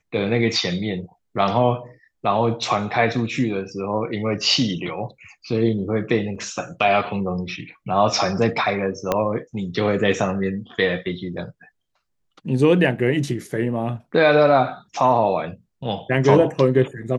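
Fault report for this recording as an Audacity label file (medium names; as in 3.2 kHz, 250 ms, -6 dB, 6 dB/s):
6.350000	6.350000	dropout 4.9 ms
9.120000	9.120000	pop -6 dBFS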